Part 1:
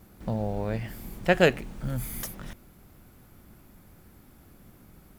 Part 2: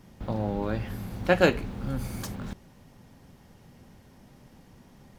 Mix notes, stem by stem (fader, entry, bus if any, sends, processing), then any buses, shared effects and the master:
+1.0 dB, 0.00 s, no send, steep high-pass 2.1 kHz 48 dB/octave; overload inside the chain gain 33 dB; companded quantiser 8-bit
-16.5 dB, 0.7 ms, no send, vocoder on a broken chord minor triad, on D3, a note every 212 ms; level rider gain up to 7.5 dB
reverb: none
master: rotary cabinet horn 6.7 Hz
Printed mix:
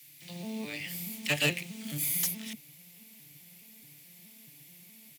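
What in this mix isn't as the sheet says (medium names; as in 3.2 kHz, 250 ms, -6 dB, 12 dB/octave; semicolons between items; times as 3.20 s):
stem 1 +1.0 dB -> +9.5 dB; master: missing rotary cabinet horn 6.7 Hz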